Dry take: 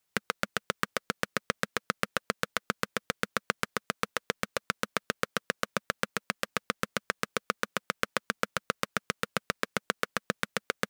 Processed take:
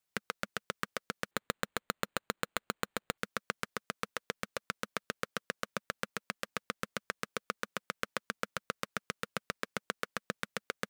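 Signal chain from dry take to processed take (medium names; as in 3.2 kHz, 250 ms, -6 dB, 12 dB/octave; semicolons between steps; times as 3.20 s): 1.31–3.18 s: careless resampling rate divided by 8×, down none, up hold; trim -6.5 dB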